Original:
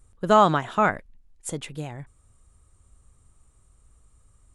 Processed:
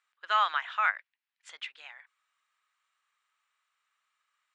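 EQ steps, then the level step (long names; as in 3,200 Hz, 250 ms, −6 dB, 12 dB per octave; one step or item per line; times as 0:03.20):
four-pole ladder high-pass 1,300 Hz, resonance 20%
Bessel low-pass filter 3,000 Hz, order 4
+7.0 dB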